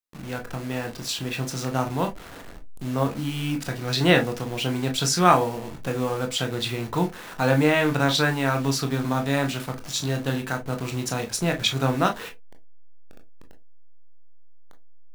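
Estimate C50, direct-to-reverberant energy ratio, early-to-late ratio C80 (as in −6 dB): 17.0 dB, 4.0 dB, 26.5 dB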